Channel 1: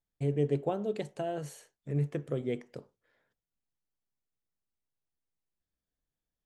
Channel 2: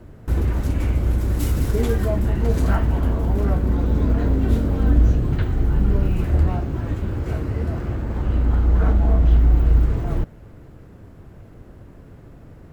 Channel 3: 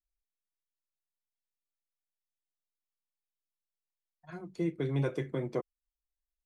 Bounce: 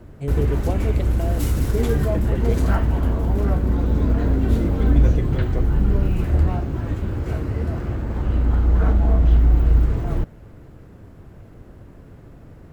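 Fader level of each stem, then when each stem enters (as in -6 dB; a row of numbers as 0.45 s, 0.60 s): +3.0 dB, 0.0 dB, +2.0 dB; 0.00 s, 0.00 s, 0.00 s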